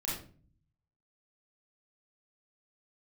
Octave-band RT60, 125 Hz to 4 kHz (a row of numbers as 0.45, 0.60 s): 1.1, 0.80, 0.50, 0.35, 0.35, 0.30 s